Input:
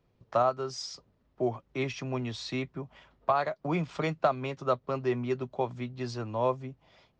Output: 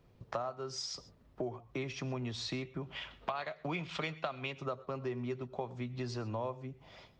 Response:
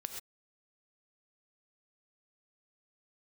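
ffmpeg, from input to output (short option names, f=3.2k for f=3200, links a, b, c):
-filter_complex "[0:a]asettb=1/sr,asplit=3[a][b][c];[a]atrim=end=2.814[d];[b]atrim=start=2.81:end=4.53,asetpts=PTS-STARTPTS,afade=t=in:d=0.004:c=qsin,afade=t=out:st=1.716:d=0.004:c=qsin,equalizer=f=3k:w=0.82:g=13[e];[c]atrim=start=4.526[f];[d][e]acrossfade=d=0.004:c1=hsin:c2=qsin[g];[g][f]acrossfade=d=0.004:c1=qsin:c2=hsin,acompressor=threshold=-42dB:ratio=5,asplit=2[h][i];[1:a]atrim=start_sample=2205,lowshelf=f=180:g=8.5[j];[i][j]afir=irnorm=-1:irlink=0,volume=-9dB[k];[h][k]amix=inputs=2:normalize=0,volume=3dB"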